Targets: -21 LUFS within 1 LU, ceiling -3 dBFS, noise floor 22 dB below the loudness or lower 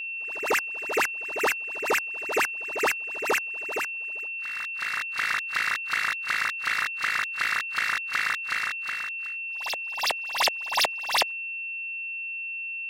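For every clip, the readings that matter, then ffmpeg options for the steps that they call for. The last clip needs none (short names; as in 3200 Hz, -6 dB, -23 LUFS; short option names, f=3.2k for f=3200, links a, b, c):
steady tone 2700 Hz; tone level -31 dBFS; loudness -26.5 LUFS; peak -12.0 dBFS; loudness target -21.0 LUFS
-> -af "bandreject=f=2.7k:w=30"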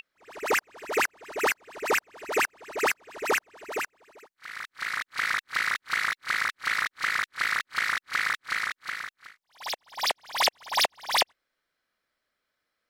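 steady tone none; loudness -28.0 LUFS; peak -11.5 dBFS; loudness target -21.0 LUFS
-> -af "volume=7dB"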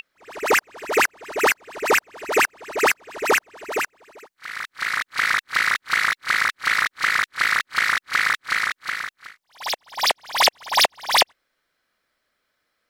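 loudness -21.0 LUFS; peak -4.5 dBFS; noise floor -76 dBFS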